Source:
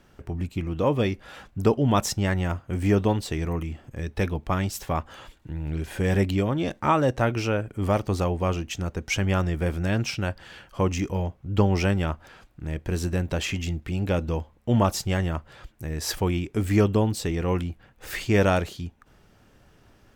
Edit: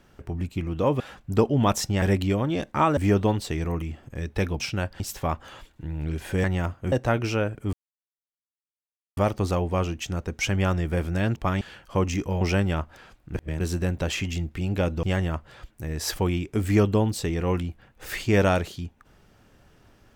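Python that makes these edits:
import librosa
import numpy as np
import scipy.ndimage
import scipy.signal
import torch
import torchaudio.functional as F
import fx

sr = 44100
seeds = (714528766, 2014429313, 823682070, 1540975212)

y = fx.edit(x, sr, fx.cut(start_s=1.0, length_s=0.28),
    fx.swap(start_s=2.3, length_s=0.48, other_s=6.1, other_length_s=0.95),
    fx.swap(start_s=4.41, length_s=0.25, other_s=10.05, other_length_s=0.4),
    fx.insert_silence(at_s=7.86, length_s=1.44),
    fx.cut(start_s=11.25, length_s=0.47),
    fx.reverse_span(start_s=12.65, length_s=0.26),
    fx.cut(start_s=14.34, length_s=0.7), tone=tone)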